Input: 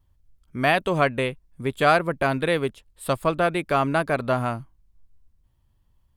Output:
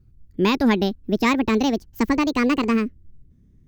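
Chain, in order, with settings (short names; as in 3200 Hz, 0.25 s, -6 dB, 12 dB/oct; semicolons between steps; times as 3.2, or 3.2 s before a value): speed glide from 138% -> 197%; resonant low shelf 480 Hz +11.5 dB, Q 1.5; gain -2.5 dB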